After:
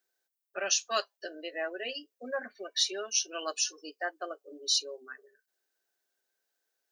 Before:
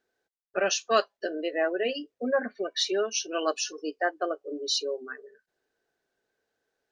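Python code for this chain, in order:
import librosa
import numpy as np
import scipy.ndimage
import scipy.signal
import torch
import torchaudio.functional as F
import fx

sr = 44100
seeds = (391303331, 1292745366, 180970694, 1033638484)

y = fx.riaa(x, sr, side='recording')
y = fx.notch(y, sr, hz=450.0, q=12.0)
y = y * 10.0 ** (-7.0 / 20.0)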